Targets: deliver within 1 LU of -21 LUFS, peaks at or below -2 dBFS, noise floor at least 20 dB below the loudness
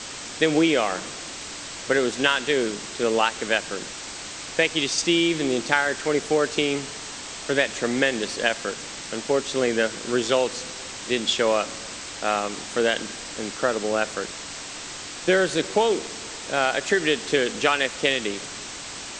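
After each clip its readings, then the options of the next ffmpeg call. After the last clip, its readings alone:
noise floor -36 dBFS; noise floor target -44 dBFS; loudness -24.0 LUFS; peak -3.0 dBFS; loudness target -21.0 LUFS
-> -af "afftdn=nr=8:nf=-36"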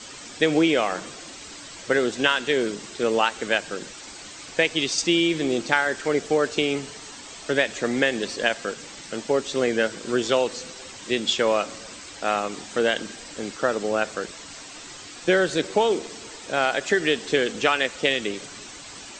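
noise floor -41 dBFS; noise floor target -44 dBFS
-> -af "afftdn=nr=6:nf=-41"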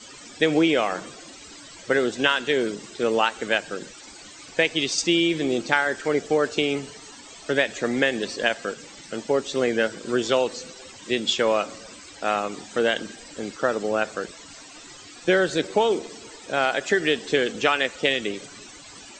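noise floor -44 dBFS; loudness -23.5 LUFS; peak -3.0 dBFS; loudness target -21.0 LUFS
-> -af "volume=2.5dB,alimiter=limit=-2dB:level=0:latency=1"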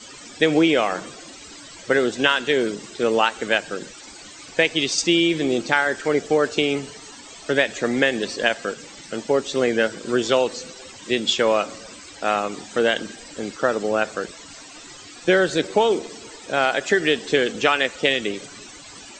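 loudness -21.5 LUFS; peak -2.0 dBFS; noise floor -42 dBFS

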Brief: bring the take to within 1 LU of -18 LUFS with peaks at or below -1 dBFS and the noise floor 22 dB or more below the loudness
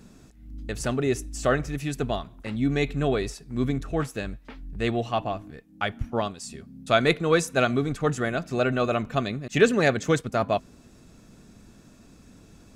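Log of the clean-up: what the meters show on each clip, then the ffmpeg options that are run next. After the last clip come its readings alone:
loudness -26.0 LUFS; peak -5.0 dBFS; loudness target -18.0 LUFS
-> -af "volume=8dB,alimiter=limit=-1dB:level=0:latency=1"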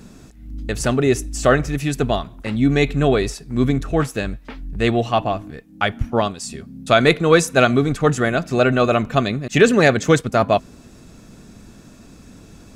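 loudness -18.5 LUFS; peak -1.0 dBFS; noise floor -45 dBFS

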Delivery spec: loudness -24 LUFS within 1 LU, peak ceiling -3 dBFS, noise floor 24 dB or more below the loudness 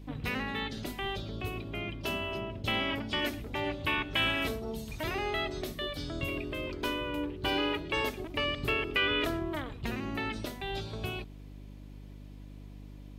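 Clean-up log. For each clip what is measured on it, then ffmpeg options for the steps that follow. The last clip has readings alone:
hum 50 Hz; harmonics up to 300 Hz; hum level -45 dBFS; loudness -33.0 LUFS; peak -16.0 dBFS; loudness target -24.0 LUFS
-> -af "bandreject=f=50:t=h:w=4,bandreject=f=100:t=h:w=4,bandreject=f=150:t=h:w=4,bandreject=f=200:t=h:w=4,bandreject=f=250:t=h:w=4,bandreject=f=300:t=h:w=4"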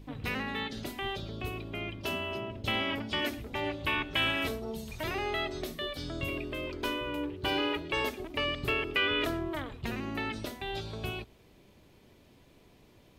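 hum none; loudness -33.0 LUFS; peak -16.0 dBFS; loudness target -24.0 LUFS
-> -af "volume=9dB"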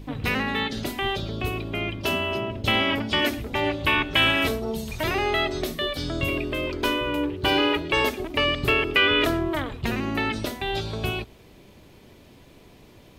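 loudness -24.0 LUFS; peak -7.0 dBFS; noise floor -51 dBFS

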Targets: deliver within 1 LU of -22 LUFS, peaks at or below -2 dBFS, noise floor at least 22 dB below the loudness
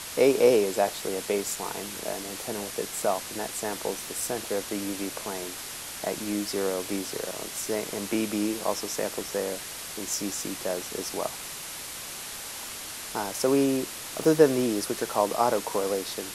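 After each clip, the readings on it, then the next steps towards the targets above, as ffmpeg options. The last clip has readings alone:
noise floor -39 dBFS; noise floor target -51 dBFS; loudness -28.5 LUFS; peak -6.0 dBFS; loudness target -22.0 LUFS
-> -af "afftdn=nr=12:nf=-39"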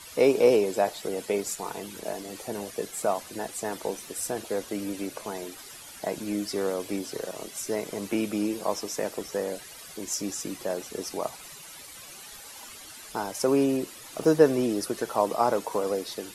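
noise floor -45 dBFS; noise floor target -51 dBFS
-> -af "afftdn=nr=6:nf=-45"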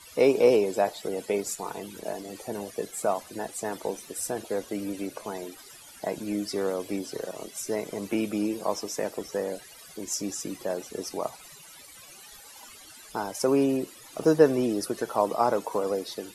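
noise floor -49 dBFS; noise floor target -51 dBFS
-> -af "afftdn=nr=6:nf=-49"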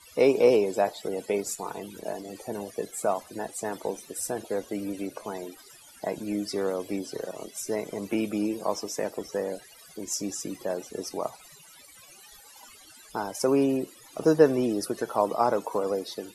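noise floor -52 dBFS; loudness -29.0 LUFS; peak -6.5 dBFS; loudness target -22.0 LUFS
-> -af "volume=7dB,alimiter=limit=-2dB:level=0:latency=1"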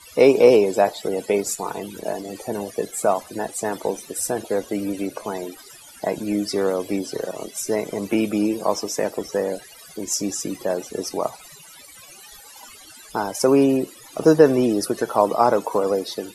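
loudness -22.0 LUFS; peak -2.0 dBFS; noise floor -45 dBFS

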